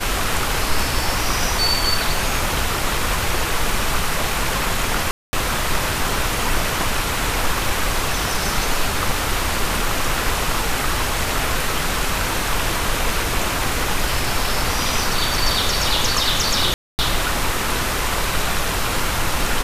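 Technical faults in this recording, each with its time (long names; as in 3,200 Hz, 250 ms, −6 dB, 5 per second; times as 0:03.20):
0:05.11–0:05.33: drop-out 220 ms
0:16.74–0:16.99: drop-out 249 ms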